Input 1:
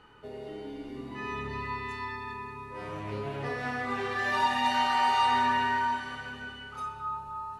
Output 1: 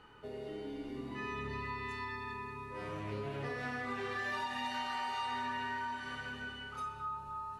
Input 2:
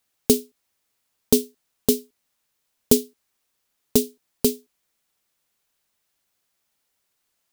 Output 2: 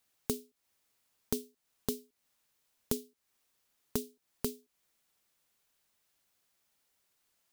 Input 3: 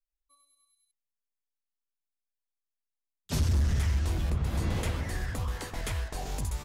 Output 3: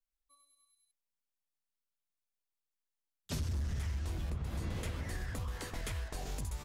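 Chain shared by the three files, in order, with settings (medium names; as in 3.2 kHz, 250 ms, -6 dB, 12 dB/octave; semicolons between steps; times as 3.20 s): compression 3:1, threshold -34 dBFS; dynamic bell 820 Hz, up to -4 dB, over -51 dBFS, Q 2.5; trim -2 dB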